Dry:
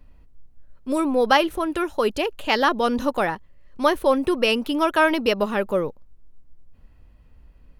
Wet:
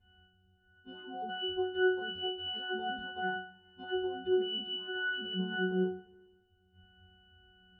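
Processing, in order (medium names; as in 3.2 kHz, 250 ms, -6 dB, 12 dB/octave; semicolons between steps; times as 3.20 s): partials quantised in pitch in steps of 3 st; peaking EQ 820 Hz -5.5 dB 2.3 oct; compressor with a negative ratio -23 dBFS, ratio -0.5; peak limiter -20 dBFS, peak gain reduction 8 dB; distance through air 300 m; pitch-class resonator F#, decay 0.44 s; multi-head delay 68 ms, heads first and second, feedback 56%, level -21.5 dB; tape noise reduction on one side only encoder only; trim +6.5 dB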